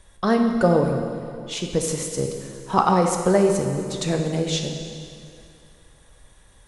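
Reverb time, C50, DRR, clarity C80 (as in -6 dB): 2.5 s, 4.5 dB, 3.0 dB, 5.5 dB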